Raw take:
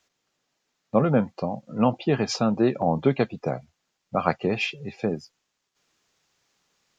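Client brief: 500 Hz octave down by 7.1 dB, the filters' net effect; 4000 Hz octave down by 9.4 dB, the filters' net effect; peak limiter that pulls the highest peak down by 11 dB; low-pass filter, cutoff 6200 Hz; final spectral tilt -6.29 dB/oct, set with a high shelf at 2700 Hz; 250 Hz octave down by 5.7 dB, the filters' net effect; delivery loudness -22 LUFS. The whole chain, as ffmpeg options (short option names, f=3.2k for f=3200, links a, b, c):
-af "lowpass=6.2k,equalizer=f=250:t=o:g=-5.5,equalizer=f=500:t=o:g=-7,highshelf=f=2.7k:g=-5,equalizer=f=4k:t=o:g=-7.5,volume=11dB,alimiter=limit=-8.5dB:level=0:latency=1"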